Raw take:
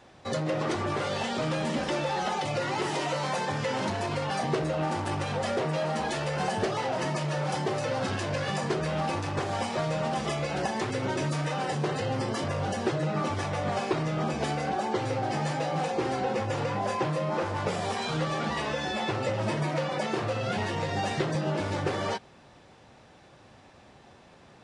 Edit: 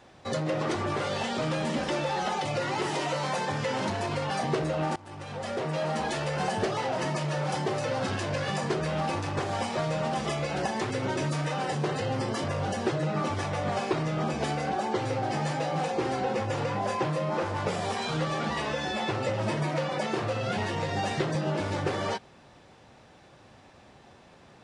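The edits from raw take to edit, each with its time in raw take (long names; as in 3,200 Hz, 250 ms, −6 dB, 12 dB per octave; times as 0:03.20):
0:04.96–0:05.88: fade in linear, from −22 dB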